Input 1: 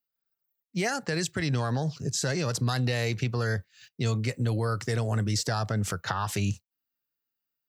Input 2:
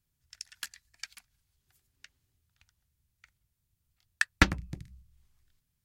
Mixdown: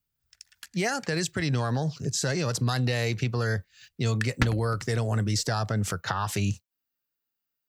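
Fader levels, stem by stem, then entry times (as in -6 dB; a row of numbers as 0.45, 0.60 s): +1.0, -5.5 dB; 0.00, 0.00 s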